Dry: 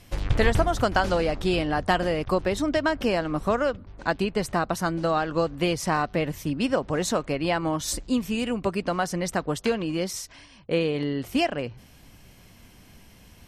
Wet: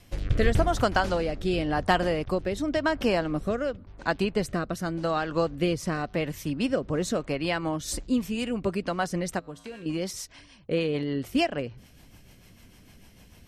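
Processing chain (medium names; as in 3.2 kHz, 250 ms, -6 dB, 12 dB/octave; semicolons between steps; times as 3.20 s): 9.39–9.86 s: feedback comb 56 Hz, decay 1.1 s, harmonics odd, mix 80%; rotary cabinet horn 0.9 Hz, later 6.7 Hz, at 7.56 s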